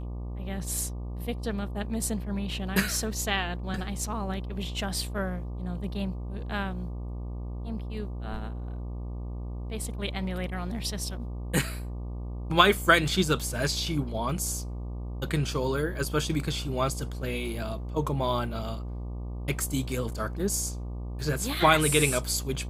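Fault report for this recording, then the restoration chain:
buzz 60 Hz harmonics 20 -35 dBFS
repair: de-hum 60 Hz, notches 20

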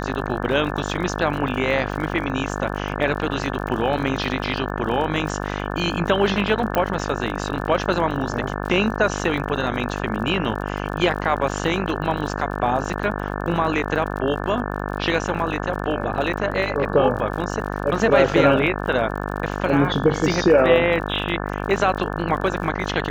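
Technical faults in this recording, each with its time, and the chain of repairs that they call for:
buzz 50 Hz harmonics 35 -27 dBFS
crackle 50 per s -31 dBFS
6.75 s: pop -8 dBFS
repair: de-click; de-hum 50 Hz, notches 35

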